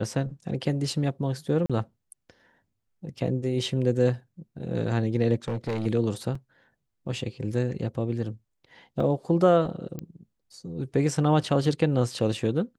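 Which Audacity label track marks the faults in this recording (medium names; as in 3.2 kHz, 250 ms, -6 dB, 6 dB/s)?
1.660000	1.700000	dropout 36 ms
5.480000	5.870000	clipped -25 dBFS
6.350000	6.350000	dropout 4.2 ms
9.000000	9.000000	dropout 3.3 ms
9.990000	9.990000	pop -21 dBFS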